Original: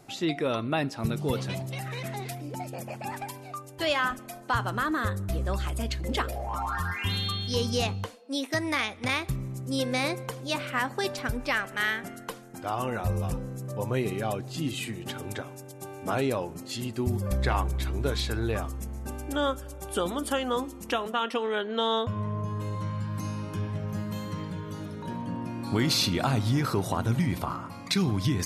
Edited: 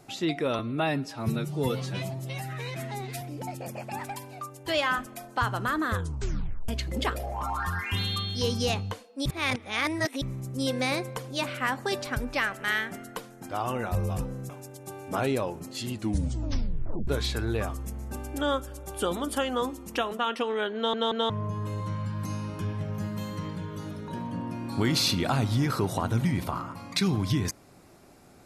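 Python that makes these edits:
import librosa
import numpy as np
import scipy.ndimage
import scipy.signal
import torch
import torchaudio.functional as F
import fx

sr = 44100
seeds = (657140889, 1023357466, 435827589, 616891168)

y = fx.edit(x, sr, fx.stretch_span(start_s=0.59, length_s=1.75, factor=1.5),
    fx.tape_stop(start_s=5.06, length_s=0.75),
    fx.reverse_span(start_s=8.38, length_s=0.96),
    fx.cut(start_s=13.62, length_s=1.82),
    fx.tape_stop(start_s=16.87, length_s=1.15),
    fx.stutter_over(start_s=21.7, slice_s=0.18, count=3), tone=tone)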